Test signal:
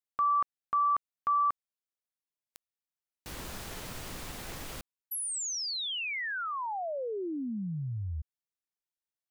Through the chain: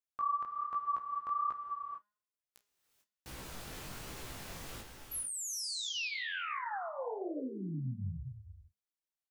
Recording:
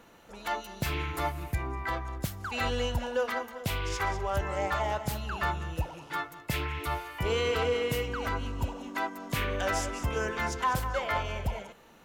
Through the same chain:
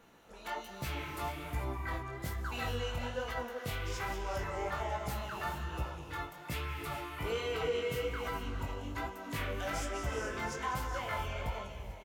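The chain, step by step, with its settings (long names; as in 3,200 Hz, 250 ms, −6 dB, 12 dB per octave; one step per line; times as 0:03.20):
hum removal 207.2 Hz, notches 37
in parallel at +1.5 dB: brickwall limiter −27 dBFS
on the sum: double-tracking delay 31 ms −14 dB
reverb whose tail is shaped and stops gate 470 ms rising, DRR 5.5 dB
chorus effect 1.2 Hz, delay 15 ms, depth 8 ms
level −9 dB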